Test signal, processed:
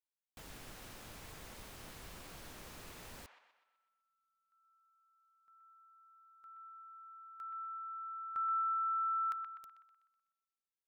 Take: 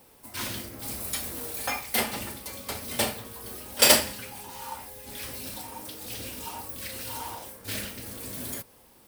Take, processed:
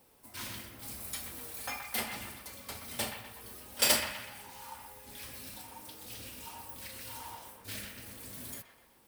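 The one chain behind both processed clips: dynamic EQ 430 Hz, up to -4 dB, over -47 dBFS, Q 0.92; band-limited delay 0.125 s, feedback 47%, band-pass 1500 Hz, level -6 dB; gain -8 dB

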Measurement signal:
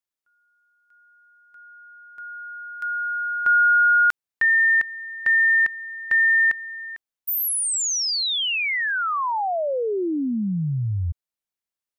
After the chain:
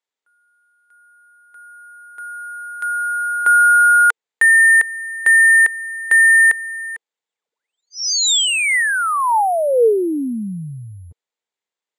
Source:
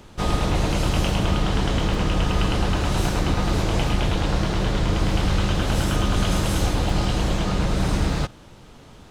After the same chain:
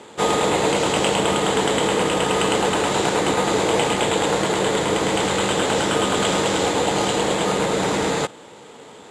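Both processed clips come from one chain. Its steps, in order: careless resampling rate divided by 4×, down filtered, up hold; speaker cabinet 250–9800 Hz, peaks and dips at 460 Hz +9 dB, 880 Hz +5 dB, 2000 Hz +4 dB, 3500 Hz +4 dB, 7400 Hz +8 dB; gain +4.5 dB

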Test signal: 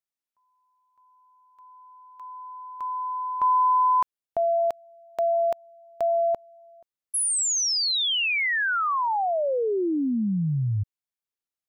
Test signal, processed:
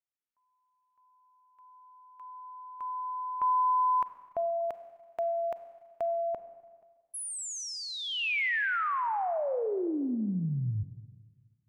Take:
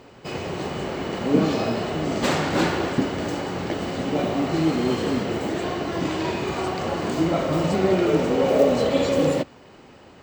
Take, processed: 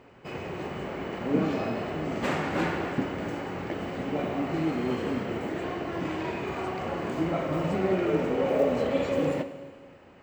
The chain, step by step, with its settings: resonant high shelf 3100 Hz -6.5 dB, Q 1.5; Schroeder reverb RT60 1.6 s, combs from 32 ms, DRR 11 dB; gain -6.5 dB

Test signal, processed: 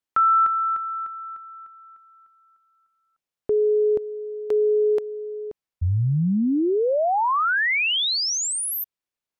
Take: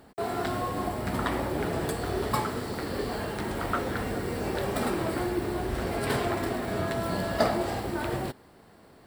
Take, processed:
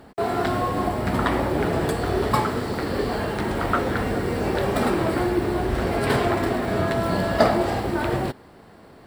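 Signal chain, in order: high shelf 5600 Hz -7.5 dB; gain +7 dB

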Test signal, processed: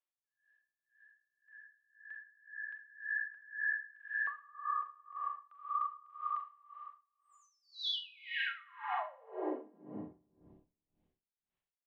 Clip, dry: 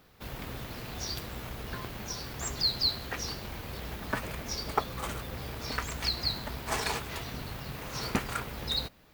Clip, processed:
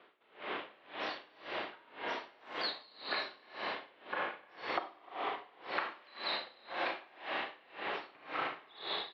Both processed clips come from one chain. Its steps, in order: vibrato 9.5 Hz 66 cents; tapped delay 0.301/0.302/0.415 s -8.5/-9/-18.5 dB; mistuned SSB -100 Hz 460–3500 Hz; Schroeder reverb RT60 1.7 s, combs from 29 ms, DRR -3 dB; compressor 6:1, threshold -34 dBFS; dB-linear tremolo 1.9 Hz, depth 27 dB; gain +3.5 dB

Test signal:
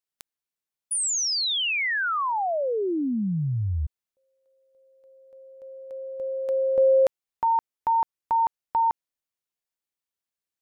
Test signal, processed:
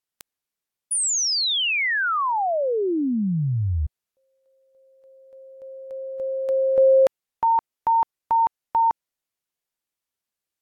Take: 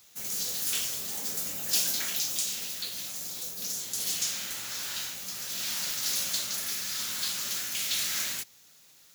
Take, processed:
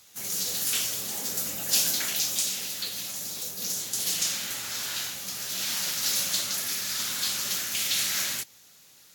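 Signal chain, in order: gain +3 dB; AAC 64 kbps 44100 Hz

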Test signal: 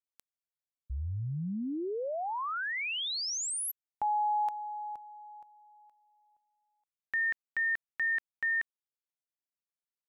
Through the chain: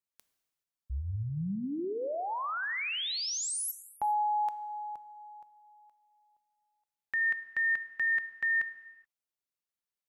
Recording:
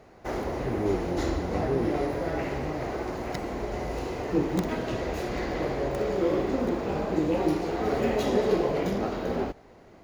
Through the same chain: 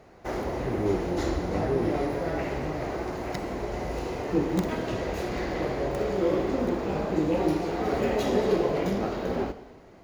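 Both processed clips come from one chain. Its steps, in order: non-linear reverb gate 0.45 s falling, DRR 12 dB

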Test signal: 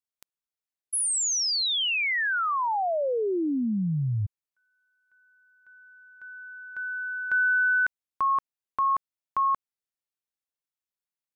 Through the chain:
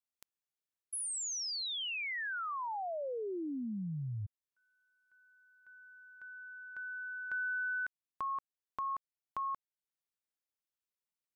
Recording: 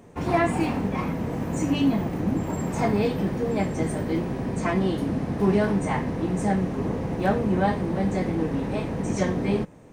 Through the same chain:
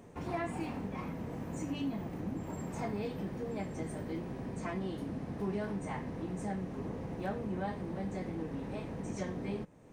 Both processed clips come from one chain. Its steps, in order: compressor 1.5:1, threshold -48 dBFS; gain -4 dB

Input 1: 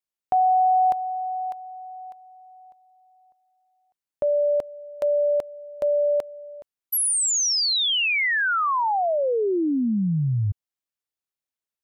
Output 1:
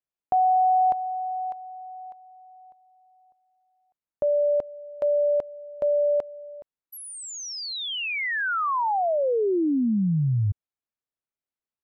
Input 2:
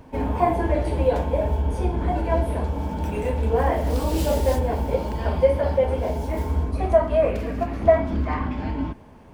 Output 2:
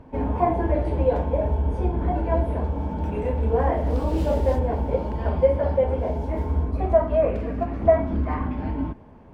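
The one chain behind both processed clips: LPF 1300 Hz 6 dB/oct

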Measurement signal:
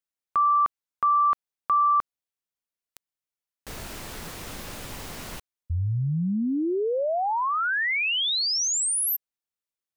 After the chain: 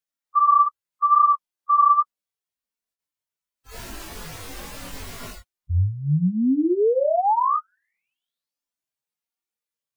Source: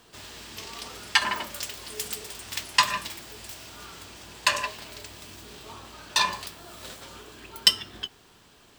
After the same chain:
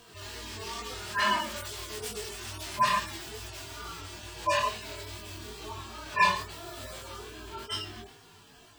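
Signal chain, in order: median-filter separation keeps harmonic; chorus 2.3 Hz, delay 19 ms, depth 3.6 ms; gain +8 dB

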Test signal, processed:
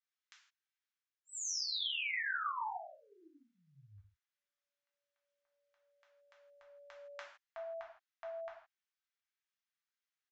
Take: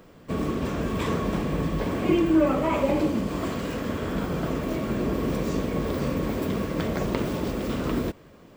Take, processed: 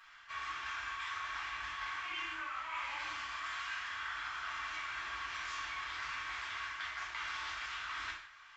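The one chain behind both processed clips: inverse Chebyshev high-pass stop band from 530 Hz, stop band 50 dB; tilt -4.5 dB/oct; reverse; compressor, threshold -48 dBFS; reverse; downsampling 16000 Hz; non-linear reverb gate 0.19 s falling, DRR -3.5 dB; gain +5 dB

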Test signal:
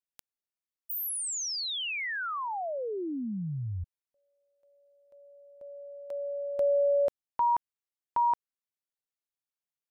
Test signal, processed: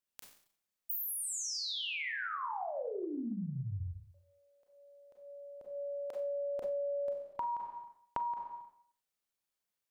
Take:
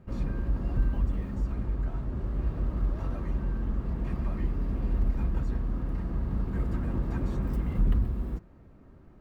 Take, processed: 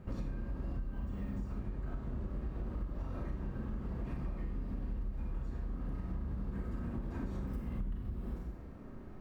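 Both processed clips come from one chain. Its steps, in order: Schroeder reverb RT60 0.58 s, combs from 30 ms, DRR 0 dB; compressor 10:1, threshold -37 dBFS; gain +2 dB

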